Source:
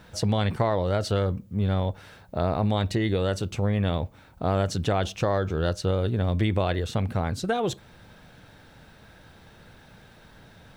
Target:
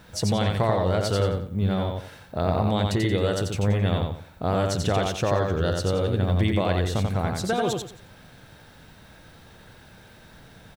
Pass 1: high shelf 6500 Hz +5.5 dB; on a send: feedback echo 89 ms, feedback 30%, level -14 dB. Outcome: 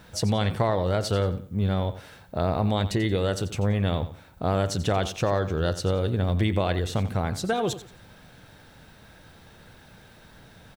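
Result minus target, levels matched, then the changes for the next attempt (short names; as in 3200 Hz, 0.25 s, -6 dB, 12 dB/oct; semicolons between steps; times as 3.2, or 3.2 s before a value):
echo-to-direct -10.5 dB
change: feedback echo 89 ms, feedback 30%, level -3.5 dB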